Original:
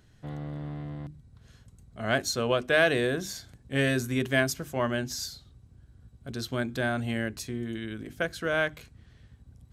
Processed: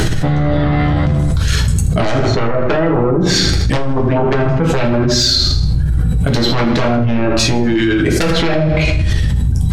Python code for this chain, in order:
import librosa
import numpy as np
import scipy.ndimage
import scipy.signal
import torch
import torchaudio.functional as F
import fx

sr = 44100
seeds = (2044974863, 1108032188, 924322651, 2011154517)

p1 = fx.env_lowpass_down(x, sr, base_hz=390.0, full_db=-23.0)
p2 = fx.dereverb_blind(p1, sr, rt60_s=1.6)
p3 = fx.fold_sine(p2, sr, drive_db=15, ceiling_db=-15.5)
p4 = p3 + fx.echo_feedback(p3, sr, ms=80, feedback_pct=47, wet_db=-13.0, dry=0)
p5 = fx.room_shoebox(p4, sr, seeds[0], volume_m3=41.0, walls='mixed', distance_m=0.64)
p6 = fx.env_flatten(p5, sr, amount_pct=100)
y = p6 * librosa.db_to_amplitude(-6.5)